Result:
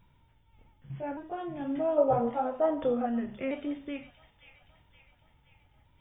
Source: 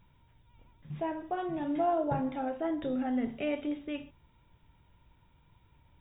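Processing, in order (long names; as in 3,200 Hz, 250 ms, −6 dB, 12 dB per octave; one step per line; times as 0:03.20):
pitch shifter swept by a sawtooth −2 semitones, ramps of 1,170 ms
gain on a spectral selection 0:01.98–0:03.06, 420–1,400 Hz +10 dB
delay with a high-pass on its return 522 ms, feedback 56%, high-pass 2,500 Hz, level −7.5 dB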